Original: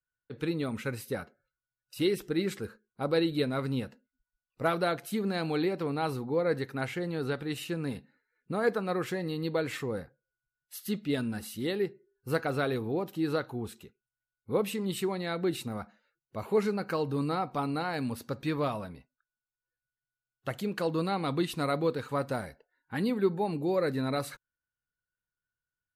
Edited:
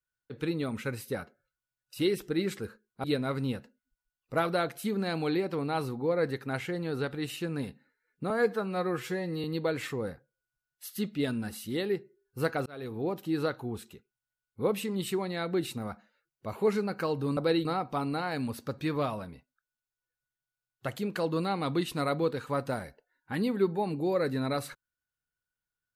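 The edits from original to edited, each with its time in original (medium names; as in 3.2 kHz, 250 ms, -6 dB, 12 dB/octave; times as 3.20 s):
3.04–3.32 s: move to 17.27 s
8.58–9.34 s: stretch 1.5×
12.56–12.98 s: fade in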